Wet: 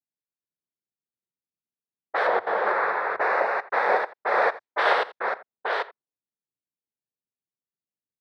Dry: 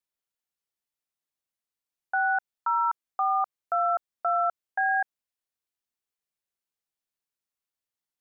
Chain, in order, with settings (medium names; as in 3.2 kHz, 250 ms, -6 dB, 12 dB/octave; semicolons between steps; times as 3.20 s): chunks repeated in reverse 485 ms, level -2.5 dB; noise-vocoded speech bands 6; 2.27–3.21 s: tilt EQ -3.5 dB/octave; delay 85 ms -18 dB; level-controlled noise filter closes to 360 Hz, open at -22 dBFS; trim +1.5 dB